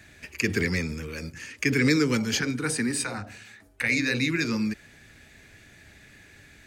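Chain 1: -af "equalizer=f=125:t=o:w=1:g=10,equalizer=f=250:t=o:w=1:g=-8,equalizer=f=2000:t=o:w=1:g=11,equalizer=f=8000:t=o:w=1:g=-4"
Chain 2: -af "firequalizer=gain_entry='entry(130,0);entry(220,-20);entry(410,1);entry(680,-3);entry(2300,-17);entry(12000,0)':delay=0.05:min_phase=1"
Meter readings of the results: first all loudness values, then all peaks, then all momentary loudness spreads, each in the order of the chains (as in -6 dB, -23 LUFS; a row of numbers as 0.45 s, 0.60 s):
-20.5 LUFS, -33.5 LUFS; -2.5 dBFS, -17.0 dBFS; 17 LU, 15 LU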